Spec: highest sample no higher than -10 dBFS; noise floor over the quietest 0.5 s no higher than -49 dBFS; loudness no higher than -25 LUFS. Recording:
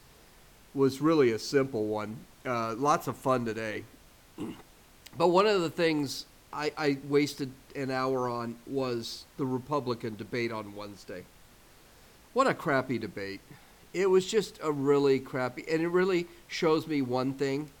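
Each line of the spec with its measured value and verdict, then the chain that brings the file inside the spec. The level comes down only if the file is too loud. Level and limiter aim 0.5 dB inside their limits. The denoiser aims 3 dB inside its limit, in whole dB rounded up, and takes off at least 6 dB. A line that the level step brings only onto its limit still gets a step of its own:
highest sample -12.5 dBFS: pass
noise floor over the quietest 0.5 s -57 dBFS: pass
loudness -29.5 LUFS: pass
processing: none needed

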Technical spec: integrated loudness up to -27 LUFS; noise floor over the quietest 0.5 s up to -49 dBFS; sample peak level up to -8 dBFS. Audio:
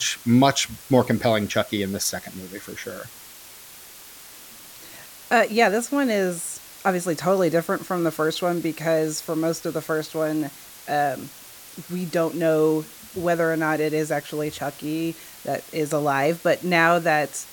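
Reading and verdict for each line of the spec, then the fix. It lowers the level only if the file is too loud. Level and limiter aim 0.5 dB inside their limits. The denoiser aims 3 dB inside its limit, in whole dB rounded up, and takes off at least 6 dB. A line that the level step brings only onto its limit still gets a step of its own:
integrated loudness -23.0 LUFS: fail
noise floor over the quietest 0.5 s -44 dBFS: fail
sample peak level -4.0 dBFS: fail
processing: noise reduction 6 dB, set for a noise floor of -44 dBFS; trim -4.5 dB

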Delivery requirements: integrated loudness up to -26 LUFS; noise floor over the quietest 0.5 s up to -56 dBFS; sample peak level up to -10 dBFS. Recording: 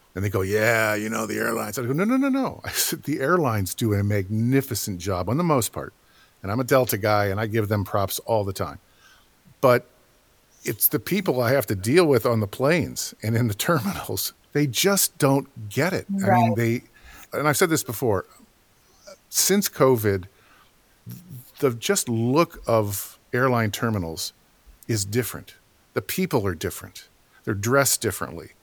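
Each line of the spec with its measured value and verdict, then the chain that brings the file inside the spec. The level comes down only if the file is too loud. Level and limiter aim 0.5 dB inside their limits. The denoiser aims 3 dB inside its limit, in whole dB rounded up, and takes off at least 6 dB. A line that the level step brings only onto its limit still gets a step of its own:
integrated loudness -23.0 LUFS: fail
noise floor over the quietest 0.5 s -59 dBFS: pass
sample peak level -4.0 dBFS: fail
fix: trim -3.5 dB; peak limiter -10.5 dBFS

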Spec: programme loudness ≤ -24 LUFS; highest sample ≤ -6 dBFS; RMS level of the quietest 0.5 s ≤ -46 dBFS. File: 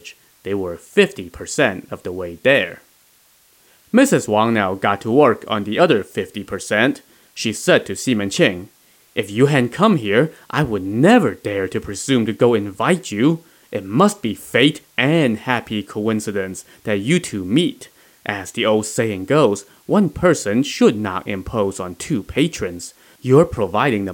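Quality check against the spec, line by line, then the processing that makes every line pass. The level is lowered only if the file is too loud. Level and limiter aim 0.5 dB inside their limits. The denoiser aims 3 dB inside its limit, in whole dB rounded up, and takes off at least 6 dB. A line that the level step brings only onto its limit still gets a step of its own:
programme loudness -18.0 LUFS: fail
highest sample -1.5 dBFS: fail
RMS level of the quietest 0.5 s -54 dBFS: pass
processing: trim -6.5 dB

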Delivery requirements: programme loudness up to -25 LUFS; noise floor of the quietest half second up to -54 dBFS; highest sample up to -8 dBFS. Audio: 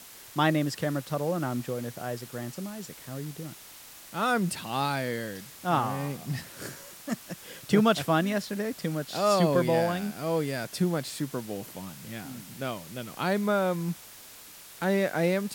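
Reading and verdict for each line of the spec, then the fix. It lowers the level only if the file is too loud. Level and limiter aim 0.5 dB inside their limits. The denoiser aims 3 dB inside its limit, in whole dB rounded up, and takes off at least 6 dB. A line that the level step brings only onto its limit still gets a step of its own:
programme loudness -29.5 LUFS: pass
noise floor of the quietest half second -48 dBFS: fail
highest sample -9.5 dBFS: pass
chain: noise reduction 9 dB, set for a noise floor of -48 dBFS

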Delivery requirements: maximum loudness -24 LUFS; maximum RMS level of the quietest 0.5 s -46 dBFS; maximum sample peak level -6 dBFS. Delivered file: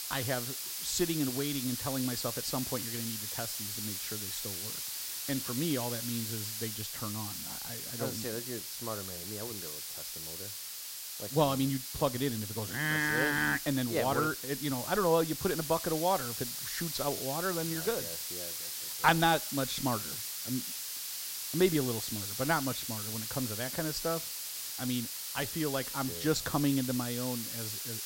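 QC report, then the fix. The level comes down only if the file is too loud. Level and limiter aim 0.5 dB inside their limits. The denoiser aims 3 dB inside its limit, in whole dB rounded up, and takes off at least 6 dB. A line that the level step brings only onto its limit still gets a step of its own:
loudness -32.5 LUFS: pass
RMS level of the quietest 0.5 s -43 dBFS: fail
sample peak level -10.0 dBFS: pass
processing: noise reduction 6 dB, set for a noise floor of -43 dBFS

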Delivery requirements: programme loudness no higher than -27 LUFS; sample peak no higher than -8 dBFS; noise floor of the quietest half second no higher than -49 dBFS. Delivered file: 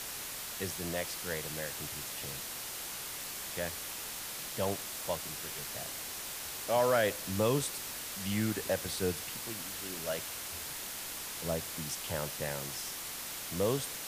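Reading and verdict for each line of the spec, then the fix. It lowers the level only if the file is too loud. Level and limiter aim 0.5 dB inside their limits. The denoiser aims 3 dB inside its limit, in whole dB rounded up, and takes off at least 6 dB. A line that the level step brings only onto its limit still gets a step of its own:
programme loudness -35.5 LUFS: pass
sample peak -15.5 dBFS: pass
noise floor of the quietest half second -41 dBFS: fail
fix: noise reduction 11 dB, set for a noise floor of -41 dBFS

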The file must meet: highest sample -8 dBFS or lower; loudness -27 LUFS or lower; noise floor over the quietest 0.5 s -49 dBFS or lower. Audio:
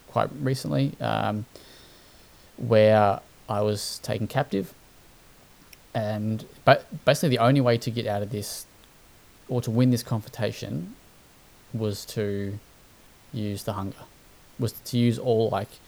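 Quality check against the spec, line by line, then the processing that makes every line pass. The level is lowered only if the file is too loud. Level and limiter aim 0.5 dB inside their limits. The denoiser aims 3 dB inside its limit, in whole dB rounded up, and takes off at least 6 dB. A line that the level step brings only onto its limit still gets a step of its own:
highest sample -3.0 dBFS: fail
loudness -25.5 LUFS: fail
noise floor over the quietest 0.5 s -54 dBFS: pass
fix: trim -2 dB; peak limiter -8.5 dBFS

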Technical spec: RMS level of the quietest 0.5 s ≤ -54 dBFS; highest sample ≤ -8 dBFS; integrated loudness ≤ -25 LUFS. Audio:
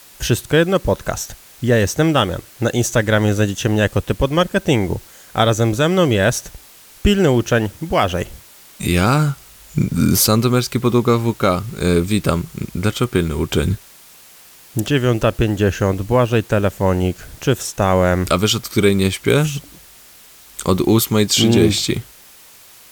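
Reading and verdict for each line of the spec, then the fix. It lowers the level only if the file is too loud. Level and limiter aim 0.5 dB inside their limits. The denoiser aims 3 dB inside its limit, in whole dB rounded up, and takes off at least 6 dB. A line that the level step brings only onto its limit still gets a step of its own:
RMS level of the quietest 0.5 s -44 dBFS: fail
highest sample -2.0 dBFS: fail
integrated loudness -17.5 LUFS: fail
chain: noise reduction 6 dB, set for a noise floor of -44 dBFS; trim -8 dB

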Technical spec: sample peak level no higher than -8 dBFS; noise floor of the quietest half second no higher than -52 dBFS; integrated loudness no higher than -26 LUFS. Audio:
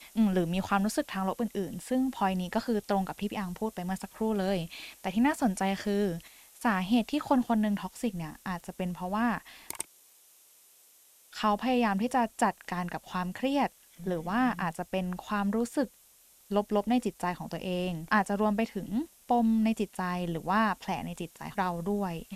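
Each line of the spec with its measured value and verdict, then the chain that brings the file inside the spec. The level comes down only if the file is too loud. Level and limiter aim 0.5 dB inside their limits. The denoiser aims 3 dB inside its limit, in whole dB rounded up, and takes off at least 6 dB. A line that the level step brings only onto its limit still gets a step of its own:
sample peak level -11.5 dBFS: pass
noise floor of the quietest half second -60 dBFS: pass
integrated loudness -30.5 LUFS: pass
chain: none needed

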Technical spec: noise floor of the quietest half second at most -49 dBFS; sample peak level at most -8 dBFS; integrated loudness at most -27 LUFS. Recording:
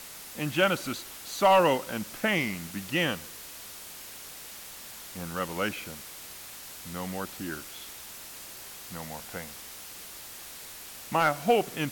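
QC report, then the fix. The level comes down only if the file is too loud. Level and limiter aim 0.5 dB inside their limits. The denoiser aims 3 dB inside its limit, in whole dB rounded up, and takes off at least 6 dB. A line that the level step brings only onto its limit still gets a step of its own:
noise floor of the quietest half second -44 dBFS: fail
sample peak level -12.0 dBFS: pass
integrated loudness -29.5 LUFS: pass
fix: noise reduction 8 dB, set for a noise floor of -44 dBFS

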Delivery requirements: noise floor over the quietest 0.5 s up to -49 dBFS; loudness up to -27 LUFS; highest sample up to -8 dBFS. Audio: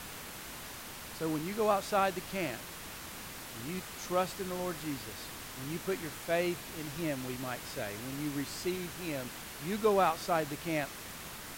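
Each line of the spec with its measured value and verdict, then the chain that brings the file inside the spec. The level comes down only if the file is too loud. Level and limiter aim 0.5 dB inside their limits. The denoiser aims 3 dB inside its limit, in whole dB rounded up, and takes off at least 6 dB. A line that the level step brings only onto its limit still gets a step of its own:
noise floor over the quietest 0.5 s -45 dBFS: fail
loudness -35.5 LUFS: pass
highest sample -15.5 dBFS: pass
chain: noise reduction 7 dB, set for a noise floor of -45 dBFS

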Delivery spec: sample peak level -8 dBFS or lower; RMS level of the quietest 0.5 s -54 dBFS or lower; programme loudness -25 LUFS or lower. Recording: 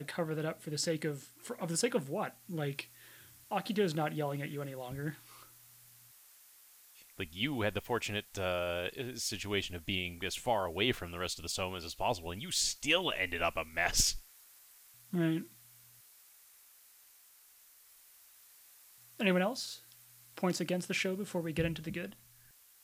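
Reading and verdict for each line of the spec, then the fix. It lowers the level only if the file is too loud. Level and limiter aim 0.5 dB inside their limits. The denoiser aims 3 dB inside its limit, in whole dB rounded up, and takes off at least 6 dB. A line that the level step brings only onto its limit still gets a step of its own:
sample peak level -14.5 dBFS: pass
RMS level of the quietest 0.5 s -62 dBFS: pass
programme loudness -35.0 LUFS: pass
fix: none needed

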